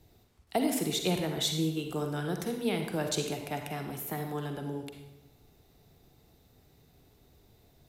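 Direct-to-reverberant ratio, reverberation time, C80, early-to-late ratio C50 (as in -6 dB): 4.0 dB, 0.95 s, 7.5 dB, 5.0 dB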